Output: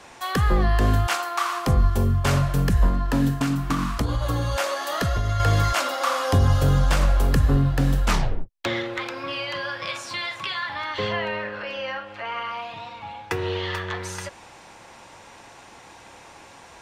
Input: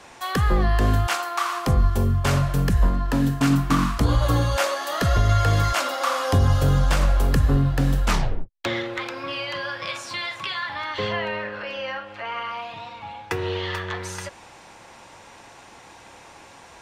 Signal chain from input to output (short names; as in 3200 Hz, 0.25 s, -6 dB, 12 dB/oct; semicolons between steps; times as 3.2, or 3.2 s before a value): 3.36–5.4 compressor, threshold -20 dBFS, peak gain reduction 6.5 dB